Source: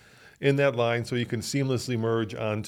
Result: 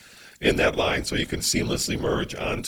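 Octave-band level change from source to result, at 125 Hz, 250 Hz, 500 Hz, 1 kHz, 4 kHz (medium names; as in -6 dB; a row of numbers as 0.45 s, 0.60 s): -3.0 dB, +1.5 dB, +0.5 dB, +3.0 dB, +9.0 dB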